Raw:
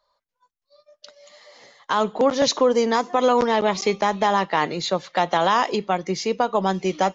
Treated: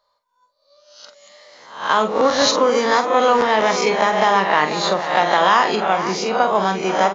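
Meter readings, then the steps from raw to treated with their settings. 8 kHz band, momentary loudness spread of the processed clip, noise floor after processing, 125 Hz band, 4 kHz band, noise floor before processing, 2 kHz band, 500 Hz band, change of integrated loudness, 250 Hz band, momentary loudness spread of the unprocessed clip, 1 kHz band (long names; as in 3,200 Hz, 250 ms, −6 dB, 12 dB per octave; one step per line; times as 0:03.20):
can't be measured, 5 LU, −68 dBFS, 0.0 dB, +5.5 dB, −82 dBFS, +8.0 dB, +3.0 dB, +4.5 dB, +0.5 dB, 5 LU, +5.5 dB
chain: peak hold with a rise ahead of every peak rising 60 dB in 0.57 s
low-shelf EQ 110 Hz −6.5 dB
double-tracking delay 46 ms −8.5 dB
slap from a distant wall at 84 metres, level −10 dB
dynamic equaliser 1,600 Hz, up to +5 dB, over −30 dBFS, Q 0.83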